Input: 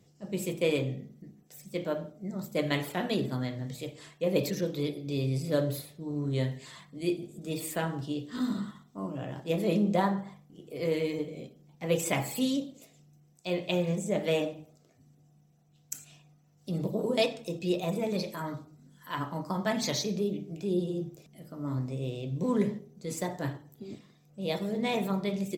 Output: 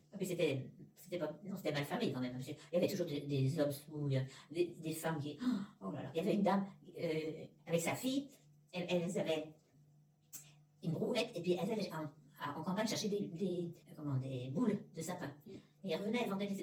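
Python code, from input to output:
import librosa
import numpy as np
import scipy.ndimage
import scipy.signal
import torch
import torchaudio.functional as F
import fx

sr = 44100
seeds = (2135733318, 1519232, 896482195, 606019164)

y = fx.self_delay(x, sr, depth_ms=0.054)
y = fx.stretch_vocoder_free(y, sr, factor=0.65)
y = y * librosa.db_to_amplitude(-4.0)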